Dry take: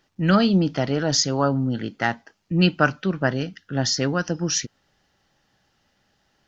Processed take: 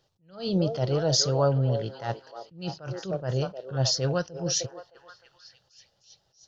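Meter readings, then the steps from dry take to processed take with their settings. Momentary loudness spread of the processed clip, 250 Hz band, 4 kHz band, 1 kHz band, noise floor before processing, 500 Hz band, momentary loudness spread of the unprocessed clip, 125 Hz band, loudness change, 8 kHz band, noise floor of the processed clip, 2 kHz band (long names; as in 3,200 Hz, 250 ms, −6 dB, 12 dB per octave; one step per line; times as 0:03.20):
14 LU, −10.5 dB, −3.5 dB, −8.5 dB, −69 dBFS, −2.0 dB, 8 LU, −2.5 dB, −5.0 dB, can't be measured, −71 dBFS, −16.5 dB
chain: graphic EQ with 10 bands 125 Hz +10 dB, 250 Hz −11 dB, 500 Hz +9 dB, 2,000 Hz −9 dB, 4,000 Hz +6 dB
echo through a band-pass that steps 307 ms, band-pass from 510 Hz, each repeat 0.7 octaves, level −7 dB
level that may rise only so fast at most 150 dB per second
level −5.5 dB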